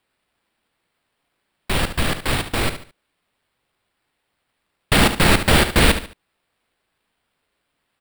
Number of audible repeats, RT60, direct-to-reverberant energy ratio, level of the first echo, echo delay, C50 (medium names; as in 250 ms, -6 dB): 3, no reverb, no reverb, -10.5 dB, 72 ms, no reverb